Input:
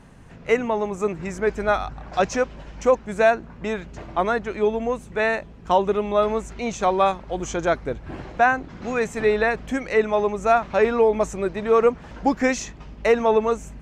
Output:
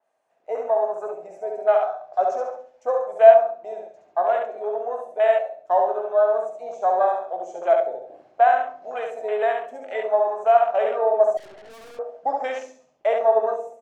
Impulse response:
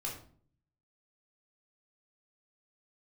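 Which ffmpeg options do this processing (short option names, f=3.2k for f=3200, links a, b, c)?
-filter_complex "[0:a]aecho=1:1:69|138|207|276|345:0.668|0.281|0.118|0.0495|0.0208,afwtdn=0.0631,highpass=f=640:t=q:w=7.7,highshelf=f=5.7k:g=6,asplit=2[a][b];[1:a]atrim=start_sample=2205,lowshelf=f=350:g=5.5[c];[b][c]afir=irnorm=-1:irlink=0,volume=-5.5dB[d];[a][d]amix=inputs=2:normalize=0,asettb=1/sr,asplit=3[e][f][g];[e]atrim=end=11.374[h];[f]atrim=start=11.37:end=11.99,asetpts=PTS-STARTPTS,afade=t=in:d=0.004:c=qsin,afade=t=out:st=0.616:d=0.004:c=qsin,aeval=exprs='(tanh(31.6*val(0)+0.4)-tanh(0.4))/31.6':c=same[i];[g]atrim=start=11.986[j];[h][i]acrossfade=d=0.004:c1=hsin:c2=qsin[k];[k][j]acrossfade=d=0.004:c1=qsin:c2=hsin,adynamicequalizer=threshold=0.0501:dfrequency=3600:dqfactor=0.7:tfrequency=3600:tqfactor=0.7:attack=5:release=100:ratio=0.375:range=2:mode=boostabove:tftype=highshelf,volume=-13.5dB"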